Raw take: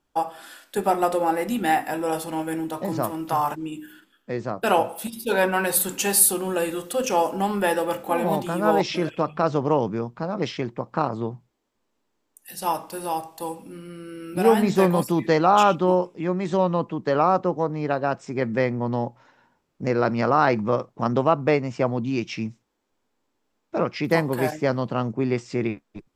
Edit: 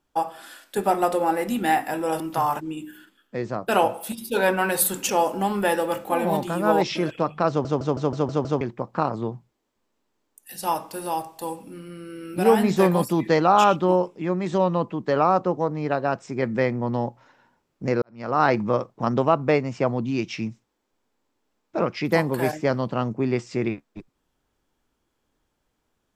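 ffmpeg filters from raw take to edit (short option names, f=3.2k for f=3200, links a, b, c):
-filter_complex "[0:a]asplit=11[a][b][c][d][e][f][g][h][i][j][k];[a]atrim=end=2.202[l];[b]atrim=start=3.148:end=6.042[m];[c]atrim=start=7.078:end=9.642[n];[d]atrim=start=9.478:end=9.642[o];[e]atrim=start=9.478:end=9.642[p];[f]atrim=start=9.478:end=9.642[q];[g]atrim=start=9.478:end=9.642[r];[h]atrim=start=9.478:end=9.642[s];[i]atrim=start=9.478:end=9.642[t];[j]atrim=start=10.598:end=20.01,asetpts=PTS-STARTPTS,afade=t=out:st=9.408:d=0.004:c=hsin[u];[k]atrim=start=20.01,asetpts=PTS-STARTPTS,afade=t=in:d=0.4:c=qua[v];[l][m]acrossfade=d=0.004:c1=hsin:c2=hsin[w];[w][n]acrossfade=d=0.004:c1=hsin:c2=hsin[x];[x][o]acrossfade=d=0.004:c1=hsin:c2=hsin[y];[y][p]acrossfade=d=0.004:c1=hsin:c2=hsin[z];[z][q]acrossfade=d=0.004:c1=hsin:c2=hsin[aa];[aa][r]acrossfade=d=0.004:c1=hsin:c2=hsin[ab];[ab][s]acrossfade=d=0.004:c1=hsin:c2=hsin[ac];[ac][t]acrossfade=d=0.004:c1=hsin:c2=hsin[ad];[u][v]concat=n=2:v=0:a=1[ae];[ad][ae]acrossfade=d=0.004:c1=hsin:c2=hsin"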